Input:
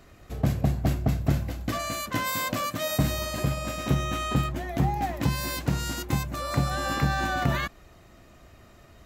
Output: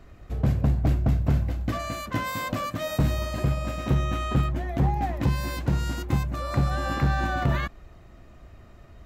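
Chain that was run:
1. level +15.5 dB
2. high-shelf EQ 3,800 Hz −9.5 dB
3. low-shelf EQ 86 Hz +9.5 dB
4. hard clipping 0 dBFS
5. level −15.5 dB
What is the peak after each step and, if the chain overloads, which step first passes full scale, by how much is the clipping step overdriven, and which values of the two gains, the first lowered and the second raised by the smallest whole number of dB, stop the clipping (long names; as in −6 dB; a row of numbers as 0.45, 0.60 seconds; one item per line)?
+4.5, +4.5, +7.5, 0.0, −15.5 dBFS
step 1, 7.5 dB
step 1 +7.5 dB, step 5 −7.5 dB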